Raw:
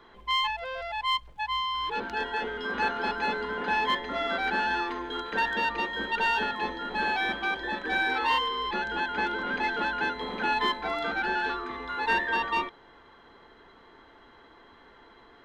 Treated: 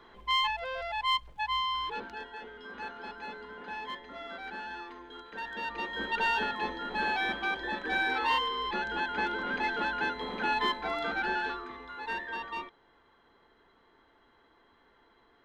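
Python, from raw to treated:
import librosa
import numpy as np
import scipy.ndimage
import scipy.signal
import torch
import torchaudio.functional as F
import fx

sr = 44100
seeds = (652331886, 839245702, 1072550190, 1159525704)

y = fx.gain(x, sr, db=fx.line((1.73, -1.0), (2.29, -13.0), (5.37, -13.0), (6.03, -2.5), (11.33, -2.5), (11.94, -10.0)))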